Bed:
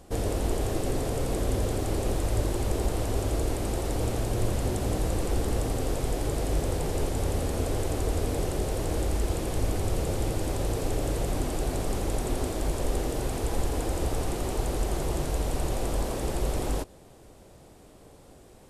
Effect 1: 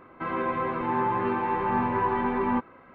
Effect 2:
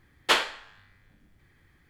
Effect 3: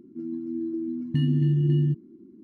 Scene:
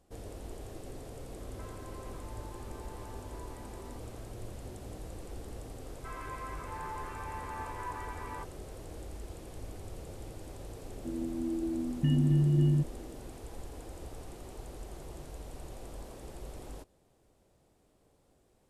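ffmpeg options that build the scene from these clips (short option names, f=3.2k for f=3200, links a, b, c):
-filter_complex "[1:a]asplit=2[a][b];[0:a]volume=-16.5dB[c];[a]acompressor=threshold=-39dB:ratio=6:attack=3.2:release=140:knee=1:detection=peak[d];[b]highpass=960[e];[3:a]aresample=8000,aresample=44100[f];[d]atrim=end=2.94,asetpts=PTS-STARTPTS,volume=-10.5dB,afade=t=in:d=0.004:c=hsin,afade=t=out:st=2.936:d=0.004:c=hsin,adelay=1390[g];[e]atrim=end=2.94,asetpts=PTS-STARTPTS,volume=-11dB,afade=t=in:d=0.004:c=hsin,afade=t=out:st=2.936:d=0.004:c=hsin,adelay=5840[h];[f]atrim=end=2.43,asetpts=PTS-STARTPTS,volume=-3.5dB,afade=t=in:d=0.004:c=hsin,afade=t=out:st=2.426:d=0.004:c=hsin,adelay=10890[i];[c][g][h][i]amix=inputs=4:normalize=0"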